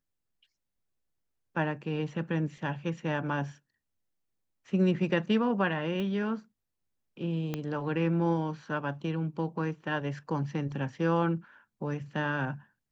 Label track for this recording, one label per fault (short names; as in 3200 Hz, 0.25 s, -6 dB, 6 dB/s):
6.000000	6.000000	pop -24 dBFS
7.540000	7.540000	pop -19 dBFS